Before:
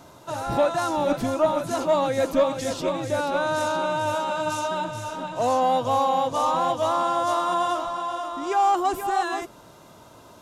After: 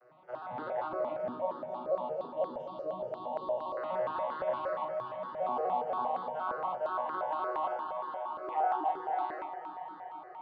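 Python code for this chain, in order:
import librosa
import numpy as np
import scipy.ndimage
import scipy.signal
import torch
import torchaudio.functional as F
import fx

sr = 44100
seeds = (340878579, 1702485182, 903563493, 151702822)

y = fx.vocoder_arp(x, sr, chord='major triad', root=47, every_ms=83)
y = fx.cheby1_bandstop(y, sr, low_hz=1100.0, high_hz=2800.0, order=5, at=(1.29, 3.77))
y = fx.rider(y, sr, range_db=5, speed_s=2.0)
y = fx.bandpass_edges(y, sr, low_hz=440.0, high_hz=6200.0)
y = fx.air_absorb(y, sr, metres=260.0)
y = fx.doubler(y, sr, ms=37.0, db=-5.0)
y = fx.echo_alternate(y, sr, ms=122, hz=810.0, feedback_pct=90, wet_db=-9)
y = fx.phaser_held(y, sr, hz=8.6, low_hz=910.0, high_hz=2400.0)
y = y * 10.0 ** (-6.5 / 20.0)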